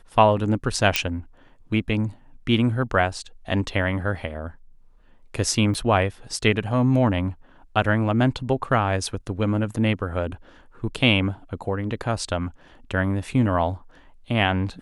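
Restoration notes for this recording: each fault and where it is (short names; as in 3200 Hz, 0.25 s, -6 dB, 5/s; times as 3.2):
0.96 pop -2 dBFS
5.74–5.75 gap 5.8 ms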